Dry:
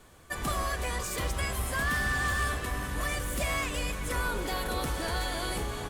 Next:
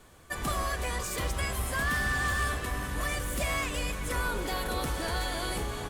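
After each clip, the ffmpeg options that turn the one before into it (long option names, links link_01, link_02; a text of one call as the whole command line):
ffmpeg -i in.wav -af anull out.wav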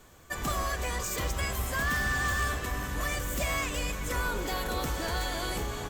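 ffmpeg -i in.wav -af "aexciter=amount=1.2:drive=4:freq=5900" out.wav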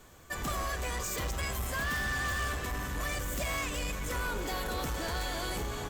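ffmpeg -i in.wav -af "asoftclip=type=tanh:threshold=-28.5dB" out.wav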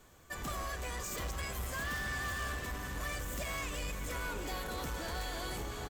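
ffmpeg -i in.wav -af "aecho=1:1:673:0.316,volume=-5dB" out.wav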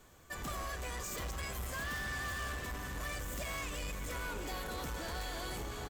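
ffmpeg -i in.wav -af "asoftclip=type=tanh:threshold=-33dB" out.wav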